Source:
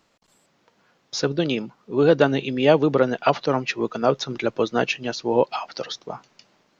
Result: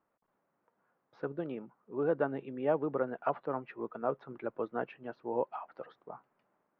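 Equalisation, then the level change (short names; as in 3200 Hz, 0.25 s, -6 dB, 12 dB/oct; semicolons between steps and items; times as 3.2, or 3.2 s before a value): ladder low-pass 1800 Hz, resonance 20%; low shelf 190 Hz -7.5 dB; -8.0 dB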